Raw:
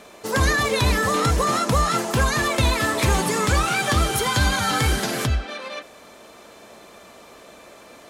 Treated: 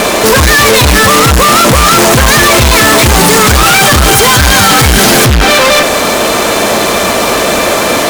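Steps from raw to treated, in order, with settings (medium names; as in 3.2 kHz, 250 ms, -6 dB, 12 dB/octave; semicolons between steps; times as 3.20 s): fuzz box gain 47 dB, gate -52 dBFS; trim +8.5 dB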